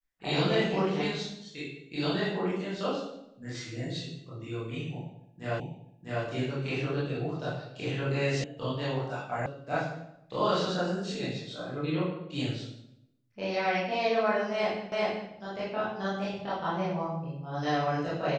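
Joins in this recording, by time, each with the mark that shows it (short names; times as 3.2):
5.6 repeat of the last 0.65 s
8.44 sound cut off
9.46 sound cut off
14.92 repeat of the last 0.39 s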